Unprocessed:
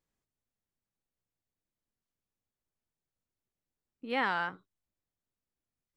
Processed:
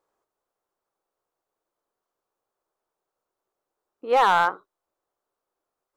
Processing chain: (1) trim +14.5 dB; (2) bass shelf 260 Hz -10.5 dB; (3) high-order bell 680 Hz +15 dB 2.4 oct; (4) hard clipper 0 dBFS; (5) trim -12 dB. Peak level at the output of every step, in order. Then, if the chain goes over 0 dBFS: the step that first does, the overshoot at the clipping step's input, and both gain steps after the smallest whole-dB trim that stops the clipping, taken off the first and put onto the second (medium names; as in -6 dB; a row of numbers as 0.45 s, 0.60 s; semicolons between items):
-3.0 dBFS, -3.5 dBFS, +6.5 dBFS, 0.0 dBFS, -12.0 dBFS; step 3, 6.5 dB; step 1 +7.5 dB, step 5 -5 dB